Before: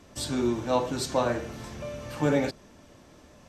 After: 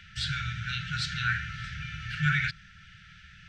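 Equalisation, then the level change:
drawn EQ curve 160 Hz 0 dB, 3,000 Hz +11 dB, 12,000 Hz −26 dB
dynamic equaliser 2,800 Hz, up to −6 dB, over −58 dBFS, Q 1.3
linear-phase brick-wall band-stop 190–1,300 Hz
+3.5 dB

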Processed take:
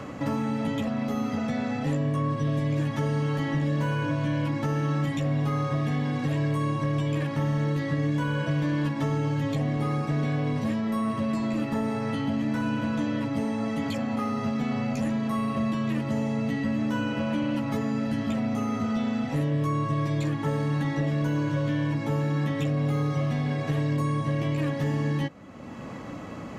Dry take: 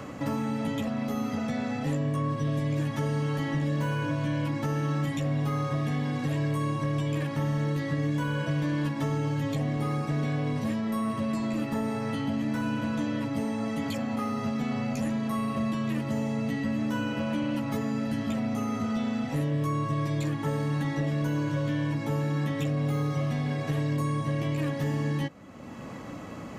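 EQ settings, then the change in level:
high-shelf EQ 8,800 Hz −9 dB
+2.0 dB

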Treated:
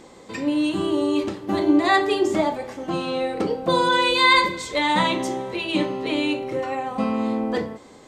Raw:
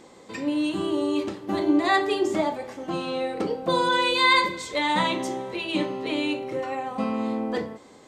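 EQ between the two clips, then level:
low-shelf EQ 62 Hz +9.5 dB
+3.0 dB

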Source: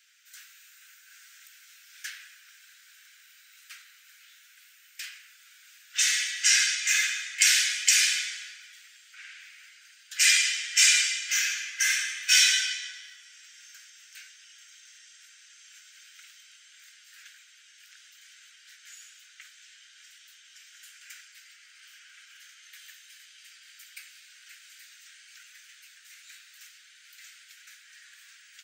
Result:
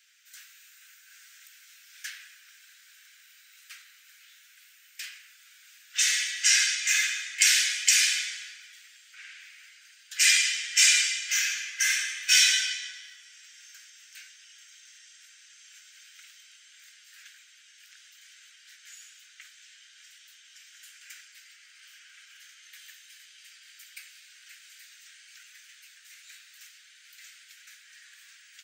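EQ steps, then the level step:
parametric band 1,400 Hz −2.5 dB 0.27 octaves
0.0 dB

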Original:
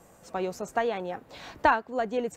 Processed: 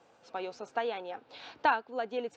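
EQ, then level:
loudspeaker in its box 120–4,700 Hz, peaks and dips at 180 Hz −10 dB, 360 Hz −4 dB, 620 Hz −6 dB, 1,100 Hz −6 dB, 1,900 Hz −8 dB
low-shelf EQ 270 Hz −12 dB
0.0 dB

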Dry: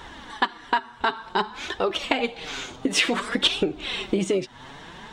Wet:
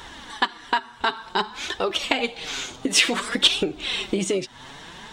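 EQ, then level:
high-shelf EQ 3,200 Hz +9 dB
−1.0 dB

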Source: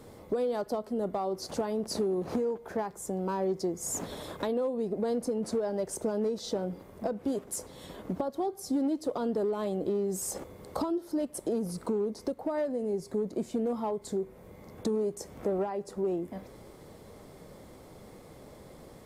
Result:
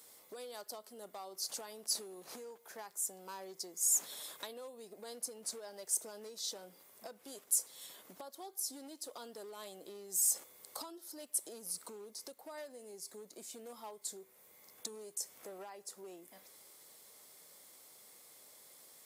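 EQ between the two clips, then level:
first difference
+4.5 dB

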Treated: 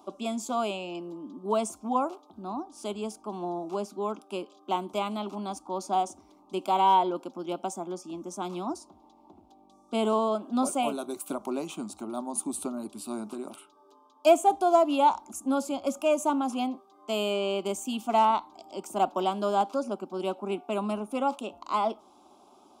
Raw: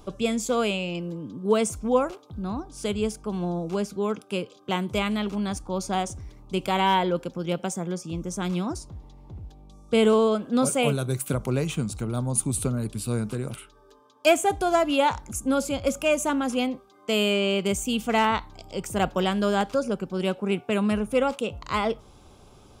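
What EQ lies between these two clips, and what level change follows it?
high-pass filter 370 Hz 12 dB per octave
high-shelf EQ 2,200 Hz −11 dB
phaser with its sweep stopped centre 480 Hz, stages 6
+4.0 dB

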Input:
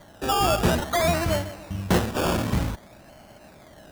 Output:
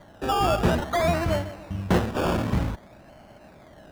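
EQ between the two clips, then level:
high-shelf EQ 4,100 Hz −10.5 dB
0.0 dB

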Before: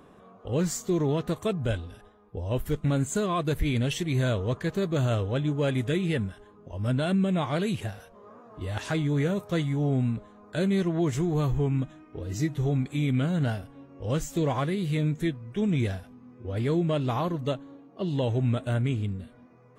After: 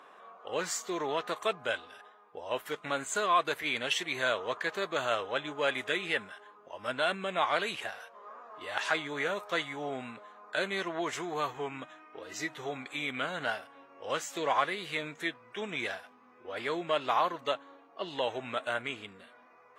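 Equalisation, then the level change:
high-pass filter 990 Hz 12 dB per octave
low-pass filter 2,200 Hz 6 dB per octave
+8.5 dB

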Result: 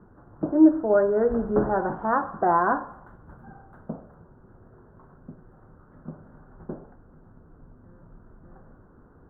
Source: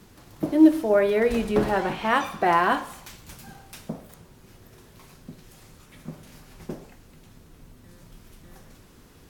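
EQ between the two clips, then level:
elliptic low-pass filter 1,500 Hz, stop band 40 dB
0.0 dB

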